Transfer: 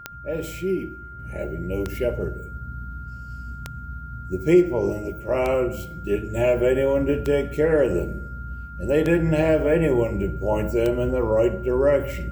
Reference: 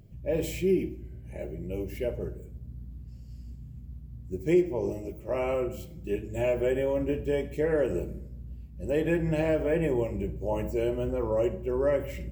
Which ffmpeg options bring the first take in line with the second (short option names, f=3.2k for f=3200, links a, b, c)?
-af "adeclick=t=4,bandreject=f=1.4k:w=30,asetnsamples=n=441:p=0,asendcmd='1.19 volume volume -7dB',volume=0dB"